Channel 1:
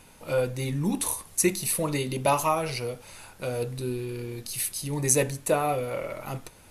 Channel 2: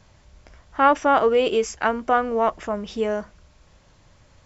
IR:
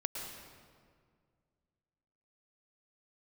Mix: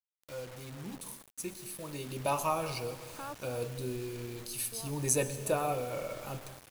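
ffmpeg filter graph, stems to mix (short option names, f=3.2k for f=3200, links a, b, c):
-filter_complex "[0:a]volume=-9dB,afade=t=in:st=1.79:d=0.69:silence=0.298538,asplit=3[a][b][c];[b]volume=-8.5dB[d];[1:a]acompressor=threshold=-22dB:ratio=4,alimiter=limit=-20.5dB:level=0:latency=1,adelay=2400,volume=-12dB,asplit=3[e][f][g];[e]atrim=end=3.68,asetpts=PTS-STARTPTS,afade=t=out:st=3.676:d=0.004:c=hsin[h];[f]atrim=start=3.68:end=4.72,asetpts=PTS-STARTPTS,volume=0[i];[g]atrim=start=4.72,asetpts=PTS-STARTPTS,afade=t=in:d=0.004:c=hsin[j];[h][i][j]concat=n=3:v=0:a=1[k];[c]apad=whole_len=302297[l];[k][l]sidechaincompress=threshold=-46dB:ratio=8:attack=16:release=365[m];[2:a]atrim=start_sample=2205[n];[d][n]afir=irnorm=-1:irlink=0[o];[a][m][o]amix=inputs=3:normalize=0,asuperstop=centerf=2000:order=8:qfactor=7.8,acrusher=bits=7:mix=0:aa=0.000001"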